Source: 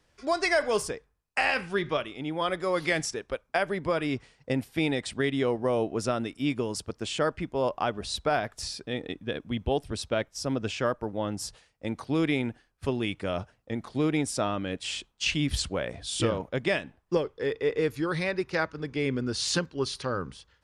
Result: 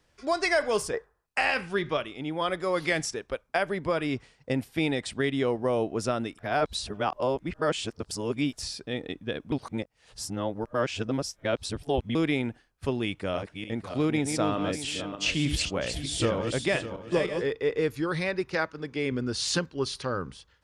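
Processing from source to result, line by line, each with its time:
0.93–1.26 spectral gain 330–2000 Hz +11 dB
6.38–8.53 reverse
9.52–12.15 reverse
13.04–17.52 regenerating reverse delay 0.302 s, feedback 46%, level -6 dB
18.55–19.12 low shelf 100 Hz -11.5 dB

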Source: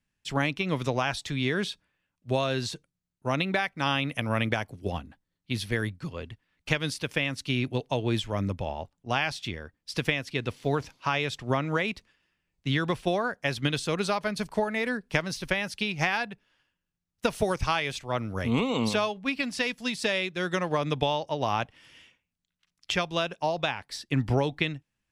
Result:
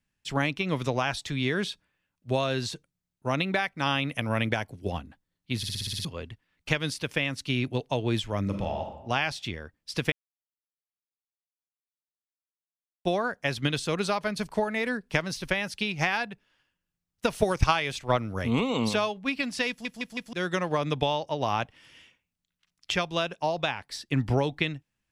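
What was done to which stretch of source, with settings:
4.27–4.9 notch 1200 Hz
5.57 stutter in place 0.06 s, 8 plays
8.41–8.95 reverb throw, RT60 0.88 s, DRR 3 dB
10.12–13.05 mute
17.41–18.19 transient shaper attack +9 dB, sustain +1 dB
19.69 stutter in place 0.16 s, 4 plays

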